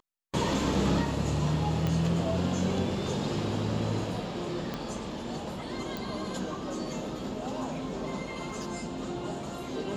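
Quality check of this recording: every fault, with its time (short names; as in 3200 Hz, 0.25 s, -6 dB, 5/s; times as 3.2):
1.87 pop -17 dBFS
4.74 pop -19 dBFS
5.97 pop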